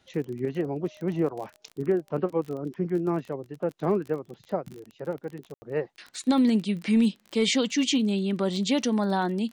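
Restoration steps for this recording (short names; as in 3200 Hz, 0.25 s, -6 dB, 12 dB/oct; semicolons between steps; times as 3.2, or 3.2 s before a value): de-click; room tone fill 5.54–5.62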